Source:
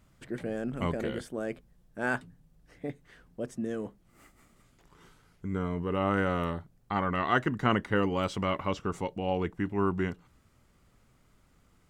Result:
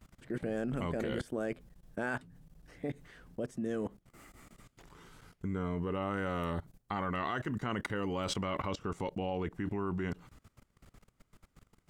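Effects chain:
0:06.02–0:08.16: high-shelf EQ 5,000 Hz +5.5 dB
output level in coarse steps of 21 dB
level +7.5 dB

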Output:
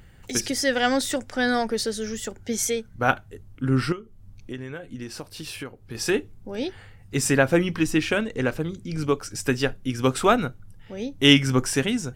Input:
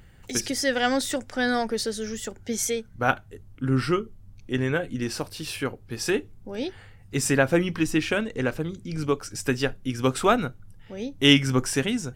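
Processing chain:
0:03.92–0:05.95: downward compressor 6 to 1, threshold −34 dBFS, peak gain reduction 14.5 dB
level +1.5 dB

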